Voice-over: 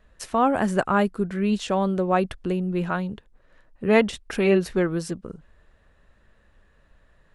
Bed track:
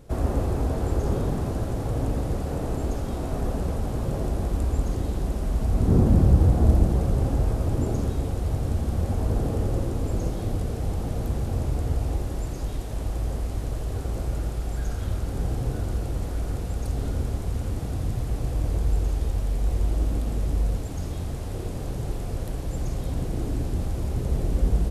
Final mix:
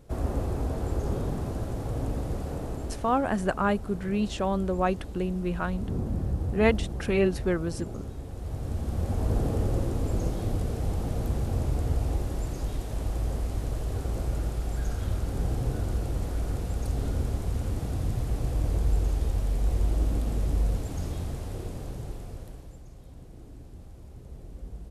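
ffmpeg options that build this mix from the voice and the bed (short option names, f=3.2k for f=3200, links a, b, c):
-filter_complex "[0:a]adelay=2700,volume=-4.5dB[a];[1:a]volume=6dB,afade=t=out:st=2.47:d=0.81:silence=0.421697,afade=t=in:st=8.27:d=1.08:silence=0.298538,afade=t=out:st=21.07:d=1.75:silence=0.133352[b];[a][b]amix=inputs=2:normalize=0"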